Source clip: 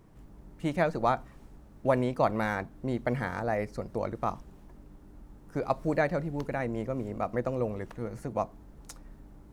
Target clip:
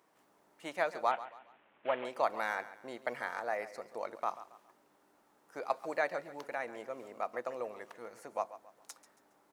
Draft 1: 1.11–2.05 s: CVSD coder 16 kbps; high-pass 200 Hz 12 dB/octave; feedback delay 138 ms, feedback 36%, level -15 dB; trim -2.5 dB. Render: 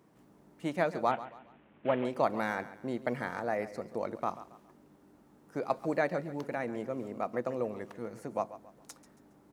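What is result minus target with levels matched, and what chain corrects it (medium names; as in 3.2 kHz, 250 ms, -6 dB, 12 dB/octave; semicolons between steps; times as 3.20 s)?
250 Hz band +10.0 dB
1.11–2.05 s: CVSD coder 16 kbps; high-pass 640 Hz 12 dB/octave; feedback delay 138 ms, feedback 36%, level -15 dB; trim -2.5 dB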